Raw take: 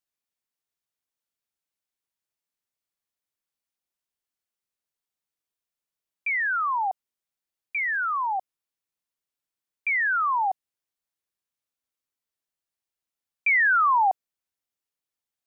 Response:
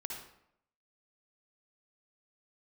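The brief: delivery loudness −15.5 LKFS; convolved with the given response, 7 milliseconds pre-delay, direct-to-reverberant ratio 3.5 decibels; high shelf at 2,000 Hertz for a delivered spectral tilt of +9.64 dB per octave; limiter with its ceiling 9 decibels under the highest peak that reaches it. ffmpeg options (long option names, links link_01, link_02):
-filter_complex "[0:a]highshelf=frequency=2000:gain=-8.5,alimiter=level_in=2.5dB:limit=-24dB:level=0:latency=1,volume=-2.5dB,asplit=2[link_01][link_02];[1:a]atrim=start_sample=2205,adelay=7[link_03];[link_02][link_03]afir=irnorm=-1:irlink=0,volume=-3dB[link_04];[link_01][link_04]amix=inputs=2:normalize=0,volume=13.5dB"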